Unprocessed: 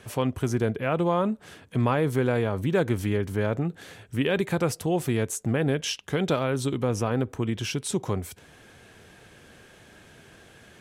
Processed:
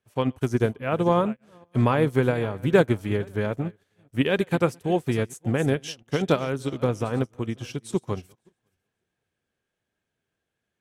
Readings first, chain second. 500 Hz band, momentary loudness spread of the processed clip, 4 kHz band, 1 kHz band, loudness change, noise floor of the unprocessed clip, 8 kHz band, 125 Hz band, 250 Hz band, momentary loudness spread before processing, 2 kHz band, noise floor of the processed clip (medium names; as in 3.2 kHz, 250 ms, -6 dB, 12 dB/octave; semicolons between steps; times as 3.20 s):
+2.0 dB, 10 LU, -2.0 dB, +2.0 dB, +1.5 dB, -53 dBFS, -7.5 dB, +1.0 dB, +1.5 dB, 6 LU, +1.5 dB, -83 dBFS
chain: backward echo that repeats 274 ms, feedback 46%, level -13.5 dB; upward expansion 2.5:1, over -45 dBFS; trim +7 dB